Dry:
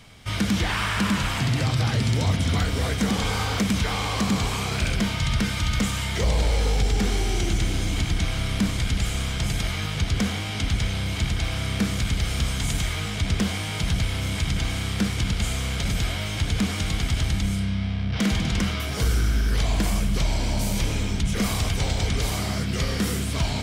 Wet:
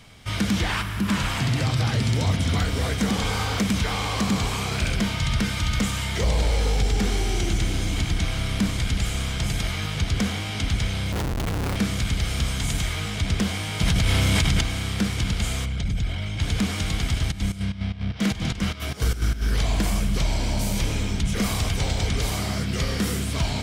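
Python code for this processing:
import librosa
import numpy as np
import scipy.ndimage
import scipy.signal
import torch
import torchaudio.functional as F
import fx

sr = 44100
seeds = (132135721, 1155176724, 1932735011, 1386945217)

y = fx.spec_box(x, sr, start_s=0.82, length_s=0.26, low_hz=390.0, high_hz=10000.0, gain_db=-9)
y = fx.schmitt(y, sr, flips_db=-27.5, at=(11.12, 11.76))
y = fx.env_flatten(y, sr, amount_pct=100, at=(13.81, 14.61))
y = fx.envelope_sharpen(y, sr, power=1.5, at=(15.64, 16.4), fade=0.02)
y = fx.volume_shaper(y, sr, bpm=149, per_beat=2, depth_db=-14, release_ms=88.0, shape='slow start', at=(17.18, 19.41), fade=0.02)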